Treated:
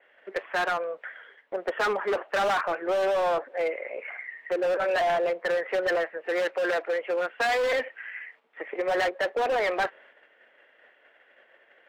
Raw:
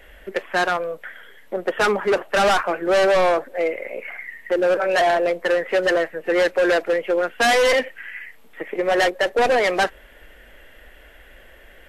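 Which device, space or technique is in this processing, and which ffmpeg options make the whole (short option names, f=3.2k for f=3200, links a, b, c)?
walkie-talkie: -filter_complex "[0:a]highpass=470,lowpass=2.5k,asoftclip=type=hard:threshold=-19dB,agate=range=-7dB:threshold=-50dB:ratio=16:detection=peak,asettb=1/sr,asplit=3[a][b][c];[a]atrim=end=6.174[d];[b]atrim=start=6.17:end=7.34,asetpts=PTS-STARTPTS,afade=t=in:d=0.004:c=qsin,afade=t=out:st=1.166:d=0.004:c=qsin,highpass=f=280:p=1[e];[c]atrim=start=7.336[f];[d][e]acrossfade=d=0.004:c1=hsin:c2=qsin[g];[g][f]acrossfade=d=0.004:c1=qsin:c2=hsin,adynamicequalizer=threshold=0.01:dfrequency=4200:dqfactor=0.7:tfrequency=4200:tqfactor=0.7:attack=5:release=100:ratio=0.375:range=2.5:mode=cutabove:tftype=highshelf,volume=-2.5dB"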